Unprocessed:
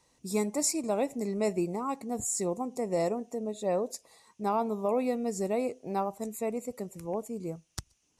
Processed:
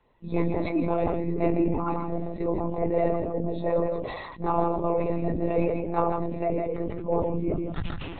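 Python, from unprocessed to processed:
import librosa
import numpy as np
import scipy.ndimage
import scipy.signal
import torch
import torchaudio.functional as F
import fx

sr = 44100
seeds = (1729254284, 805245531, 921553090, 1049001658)

p1 = fx.phase_scramble(x, sr, seeds[0], window_ms=50)
p2 = fx.lowpass(p1, sr, hz=2100.0, slope=6)
p3 = fx.rider(p2, sr, range_db=10, speed_s=2.0)
p4 = p2 + F.gain(torch.from_numpy(p3), 3.0).numpy()
p5 = p4 + 10.0 ** (-8.5 / 20.0) * np.pad(p4, (int(155 * sr / 1000.0), 0))[:len(p4)]
p6 = fx.lpc_monotone(p5, sr, seeds[1], pitch_hz=170.0, order=16)
p7 = fx.sustainer(p6, sr, db_per_s=35.0)
y = F.gain(torch.from_numpy(p7), -4.0).numpy()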